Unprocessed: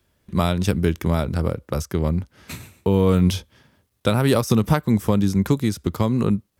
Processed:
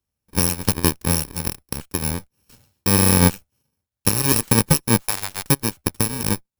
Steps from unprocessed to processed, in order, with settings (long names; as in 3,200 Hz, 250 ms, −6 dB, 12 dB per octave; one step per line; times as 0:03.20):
samples in bit-reversed order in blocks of 64 samples
0:05.02–0:05.49: high-pass filter 630 Hz 24 dB per octave
harmonic generator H 7 −16 dB, 8 −25 dB, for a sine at −4 dBFS
level +3 dB